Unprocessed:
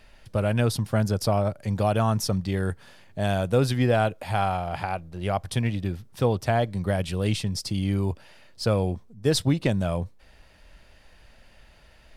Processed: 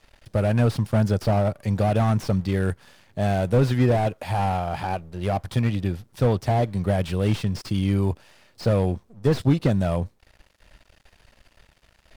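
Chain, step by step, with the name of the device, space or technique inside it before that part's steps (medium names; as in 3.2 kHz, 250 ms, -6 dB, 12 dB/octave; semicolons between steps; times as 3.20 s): early transistor amplifier (crossover distortion -53 dBFS; slew-rate limiter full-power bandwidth 46 Hz); trim +3.5 dB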